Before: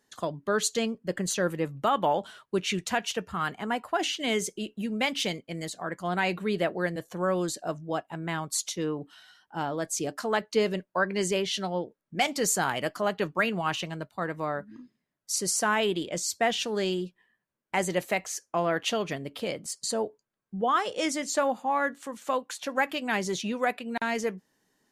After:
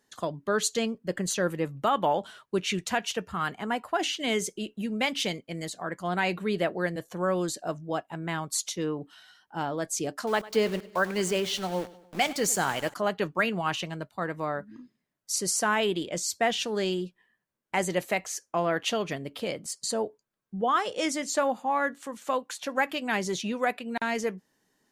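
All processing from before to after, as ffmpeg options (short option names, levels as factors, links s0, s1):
-filter_complex "[0:a]asettb=1/sr,asplit=3[s0][s1][s2];[s0]atrim=end=10.274[s3];[s1]atrim=start=10.27:end=12.94,asetpts=PTS-STARTPTS,afade=t=in:d=0.004:c=qsin,afade=t=out:st=2.666:d=0.004:c=qsin,aeval=exprs='val(0)*gte(abs(val(0)),0.0141)':c=same,aecho=1:1:100|200|300|400:0.112|0.0572|0.0292|0.0149,atrim=end_sample=117747[s4];[s2]atrim=start=12.936[s5];[s3][s4]acrossfade=d=0.004:c1=hsin:c2=qsin[s6];[s6][s5]acrossfade=d=0.004:c1=qsin:c2=hsin"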